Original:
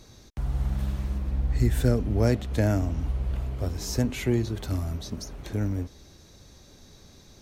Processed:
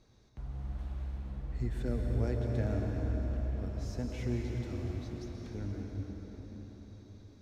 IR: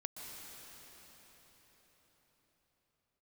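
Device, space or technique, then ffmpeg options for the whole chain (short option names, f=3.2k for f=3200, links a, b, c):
cathedral: -filter_complex "[1:a]atrim=start_sample=2205[a];[0:a][a]afir=irnorm=-1:irlink=0,aemphasis=mode=reproduction:type=50fm,volume=-9dB"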